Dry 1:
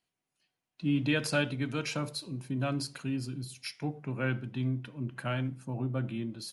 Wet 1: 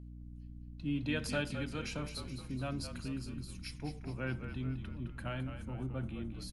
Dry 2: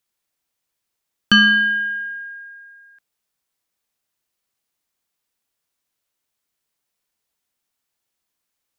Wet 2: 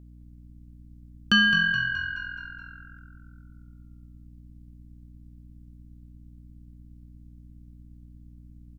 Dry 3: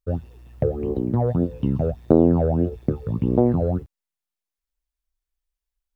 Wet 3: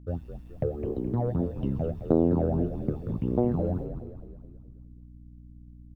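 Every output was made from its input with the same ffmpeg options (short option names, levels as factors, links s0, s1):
-filter_complex "[0:a]aeval=exprs='val(0)+0.01*(sin(2*PI*60*n/s)+sin(2*PI*2*60*n/s)/2+sin(2*PI*3*60*n/s)/3+sin(2*PI*4*60*n/s)/4+sin(2*PI*5*60*n/s)/5)':c=same,asplit=7[s0][s1][s2][s3][s4][s5][s6];[s1]adelay=212,afreqshift=-43,volume=0.355[s7];[s2]adelay=424,afreqshift=-86,volume=0.188[s8];[s3]adelay=636,afreqshift=-129,volume=0.1[s9];[s4]adelay=848,afreqshift=-172,volume=0.0531[s10];[s5]adelay=1060,afreqshift=-215,volume=0.0279[s11];[s6]adelay=1272,afreqshift=-258,volume=0.0148[s12];[s0][s7][s8][s9][s10][s11][s12]amix=inputs=7:normalize=0,volume=0.447"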